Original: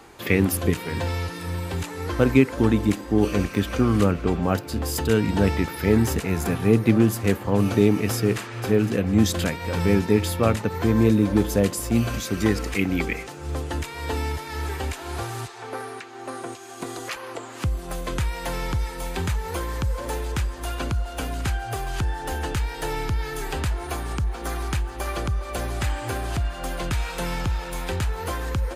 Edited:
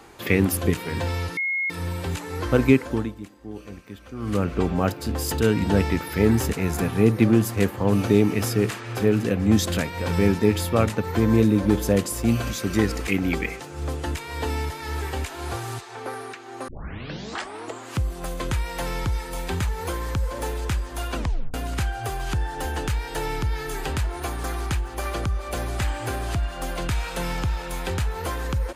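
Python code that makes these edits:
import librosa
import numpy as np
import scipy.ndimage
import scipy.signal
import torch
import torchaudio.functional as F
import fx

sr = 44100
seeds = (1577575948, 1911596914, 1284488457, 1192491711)

y = fx.edit(x, sr, fx.insert_tone(at_s=1.37, length_s=0.33, hz=2160.0, db=-22.0),
    fx.fade_down_up(start_s=2.43, length_s=1.78, db=-17.0, fade_s=0.39),
    fx.tape_start(start_s=16.35, length_s=1.06),
    fx.tape_stop(start_s=20.83, length_s=0.38),
    fx.cut(start_s=24.11, length_s=0.35), tone=tone)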